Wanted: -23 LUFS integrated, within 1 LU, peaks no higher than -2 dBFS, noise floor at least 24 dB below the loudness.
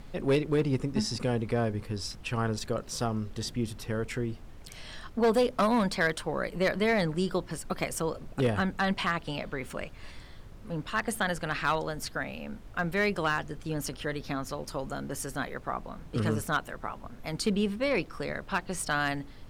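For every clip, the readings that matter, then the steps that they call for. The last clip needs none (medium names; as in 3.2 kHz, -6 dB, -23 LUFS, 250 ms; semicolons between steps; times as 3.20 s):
clipped samples 0.4%; clipping level -18.5 dBFS; noise floor -47 dBFS; noise floor target -55 dBFS; loudness -31.0 LUFS; peak level -18.5 dBFS; loudness target -23.0 LUFS
-> clip repair -18.5 dBFS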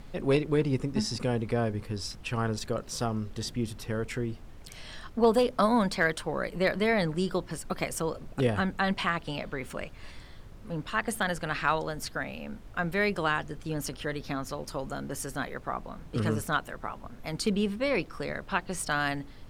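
clipped samples 0.0%; noise floor -47 dBFS; noise floor target -55 dBFS
-> noise print and reduce 8 dB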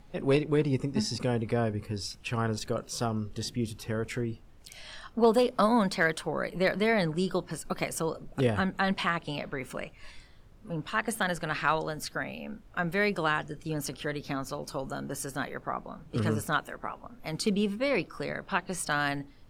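noise floor -53 dBFS; noise floor target -55 dBFS
-> noise print and reduce 6 dB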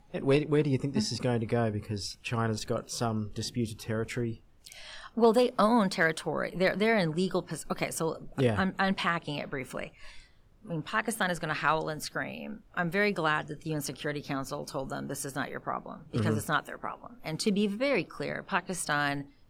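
noise floor -57 dBFS; loudness -30.5 LUFS; peak level -11.0 dBFS; loudness target -23.0 LUFS
-> trim +7.5 dB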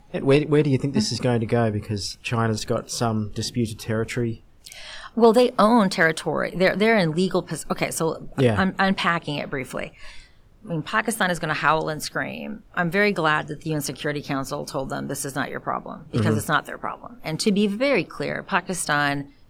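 loudness -23.0 LUFS; peak level -3.5 dBFS; noise floor -50 dBFS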